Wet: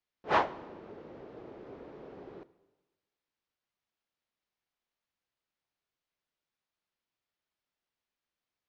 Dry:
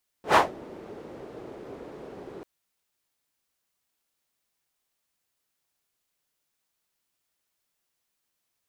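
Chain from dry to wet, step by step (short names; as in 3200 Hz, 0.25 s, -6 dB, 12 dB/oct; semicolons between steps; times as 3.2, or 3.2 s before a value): Bessel low-pass 3700 Hz, order 8; on a send: reverb RT60 1.2 s, pre-delay 9 ms, DRR 16 dB; on the sum: gain -6 dB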